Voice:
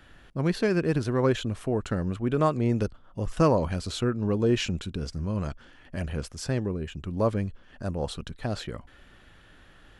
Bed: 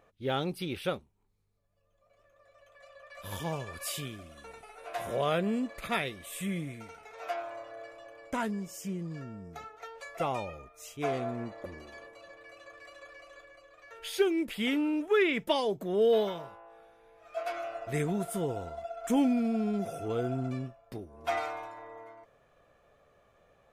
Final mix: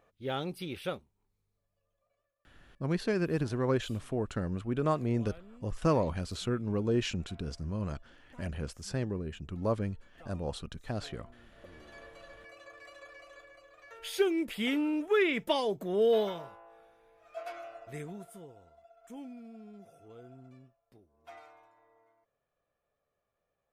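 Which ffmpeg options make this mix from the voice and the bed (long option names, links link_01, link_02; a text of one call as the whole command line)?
ffmpeg -i stem1.wav -i stem2.wav -filter_complex "[0:a]adelay=2450,volume=-5.5dB[link_01];[1:a]volume=19dB,afade=type=out:start_time=1.55:duration=0.8:silence=0.1,afade=type=in:start_time=11.48:duration=0.63:silence=0.0749894,afade=type=out:start_time=16.32:duration=2.2:silence=0.11885[link_02];[link_01][link_02]amix=inputs=2:normalize=0" out.wav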